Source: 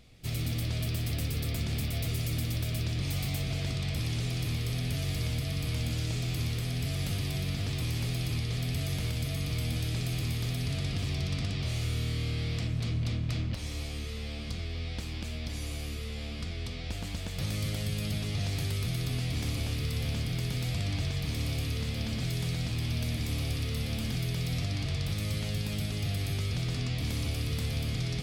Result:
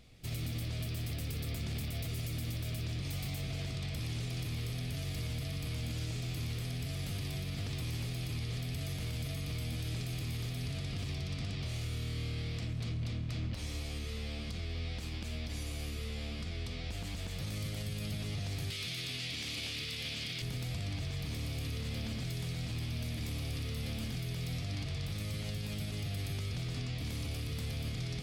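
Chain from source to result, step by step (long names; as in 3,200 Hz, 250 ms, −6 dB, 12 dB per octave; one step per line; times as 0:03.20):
0:18.70–0:20.42: meter weighting curve D
brickwall limiter −28 dBFS, peak gain reduction 10.5 dB
level −2 dB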